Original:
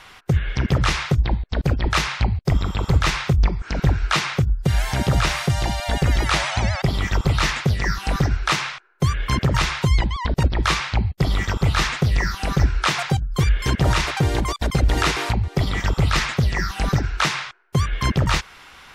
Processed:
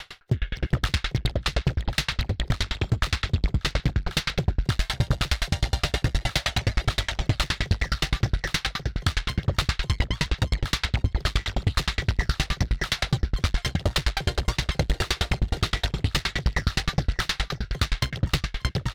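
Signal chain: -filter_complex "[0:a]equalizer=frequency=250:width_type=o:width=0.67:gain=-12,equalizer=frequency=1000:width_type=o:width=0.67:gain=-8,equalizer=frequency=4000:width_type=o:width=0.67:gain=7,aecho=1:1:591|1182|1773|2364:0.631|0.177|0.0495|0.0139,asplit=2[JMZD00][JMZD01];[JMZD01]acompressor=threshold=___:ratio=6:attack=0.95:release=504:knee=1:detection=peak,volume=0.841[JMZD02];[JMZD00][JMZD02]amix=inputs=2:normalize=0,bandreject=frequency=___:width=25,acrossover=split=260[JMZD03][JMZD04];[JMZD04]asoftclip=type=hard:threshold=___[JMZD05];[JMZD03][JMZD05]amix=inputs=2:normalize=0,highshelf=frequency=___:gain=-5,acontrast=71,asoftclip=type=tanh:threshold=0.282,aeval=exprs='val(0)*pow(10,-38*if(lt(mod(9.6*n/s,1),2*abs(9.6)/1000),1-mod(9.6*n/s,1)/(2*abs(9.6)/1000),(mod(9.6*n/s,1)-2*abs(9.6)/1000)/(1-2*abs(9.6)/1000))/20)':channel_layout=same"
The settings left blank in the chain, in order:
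0.0398, 2400, 0.141, 4900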